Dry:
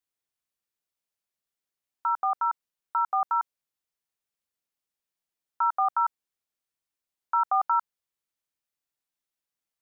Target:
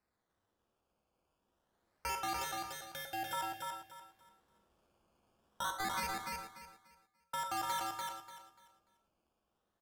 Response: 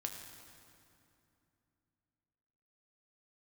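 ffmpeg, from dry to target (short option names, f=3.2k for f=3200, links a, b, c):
-filter_complex "[0:a]asettb=1/sr,asplit=3[a][b][c];[a]atrim=end=5.784[d];[b]atrim=start=5.78:end=7.34,asetpts=PTS-STARTPTS,afade=t=in:d=0.004:c=qsin,afade=t=out:st=1.556:d=0.004:c=qsin,agate=range=-26dB:threshold=-23dB:ratio=16:detection=peak[e];[c]atrim=start=7.336[f];[d][e]acrossfade=d=0.004:c1=hsin:c2=qsin[g];[g][f]acrossfade=d=0.004:c1=qsin:c2=hsin,dynaudnorm=f=230:g=17:m=8dB,alimiter=limit=-15.5dB:level=0:latency=1,acrossover=split=430|3000[h][i][j];[i]acompressor=threshold=-34dB:ratio=6[k];[h][k][j]amix=inputs=3:normalize=0,acrusher=samples=13:mix=1:aa=0.000001:lfo=1:lforange=20.8:lforate=0.25,asoftclip=type=hard:threshold=-37.5dB,asettb=1/sr,asplit=3[l][m][n];[l]atrim=end=2.414[o];[m]atrim=start=2.41:end=3.33,asetpts=PTS-STARTPTS,afade=t=in:d=0.004:c=qsin,afade=t=out:st=0.916:d=0.004:c=qsin,asuperstop=centerf=1100:order=20:qfactor=1.9[p];[n]atrim=start=3.326[q];[o][p]acrossfade=d=0.004:c1=hsin:c2=qsin[r];[r][q]acrossfade=d=0.004:c1=qsin:c2=hsin,aecho=1:1:293|586|879|1172:0.668|0.174|0.0452|0.0117[s];[1:a]atrim=start_sample=2205,atrim=end_sample=3969,asetrate=30429,aresample=44100[t];[s][t]afir=irnorm=-1:irlink=0,volume=3.5dB"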